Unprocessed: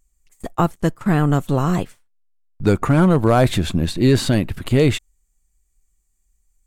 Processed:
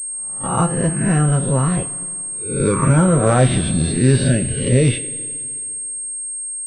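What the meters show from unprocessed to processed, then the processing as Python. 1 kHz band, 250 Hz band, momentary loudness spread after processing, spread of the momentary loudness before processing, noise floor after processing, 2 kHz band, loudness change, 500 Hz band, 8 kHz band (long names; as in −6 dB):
0.0 dB, 0.0 dB, 10 LU, 9 LU, −27 dBFS, +1.0 dB, +0.5 dB, 0.0 dB, +17.5 dB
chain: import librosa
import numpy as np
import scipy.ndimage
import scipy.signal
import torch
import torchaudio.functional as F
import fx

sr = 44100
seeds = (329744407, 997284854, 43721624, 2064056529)

y = fx.spec_swells(x, sr, rise_s=0.9)
y = fx.noise_reduce_blind(y, sr, reduce_db=15)
y = fx.rev_double_slope(y, sr, seeds[0], early_s=0.22, late_s=2.3, knee_db=-19, drr_db=4.0)
y = fx.pwm(y, sr, carrier_hz=8500.0)
y = F.gain(torch.from_numpy(y), -3.5).numpy()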